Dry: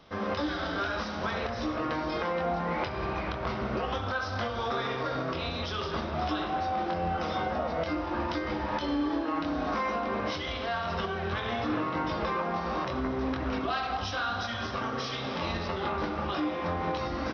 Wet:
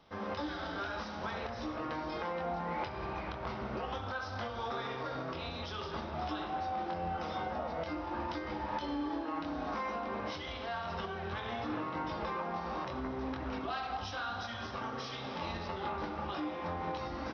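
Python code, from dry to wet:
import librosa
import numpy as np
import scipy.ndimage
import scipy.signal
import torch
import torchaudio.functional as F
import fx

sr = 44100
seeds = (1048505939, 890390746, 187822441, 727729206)

y = fx.peak_eq(x, sr, hz=860.0, db=6.0, octaves=0.22)
y = y * 10.0 ** (-7.5 / 20.0)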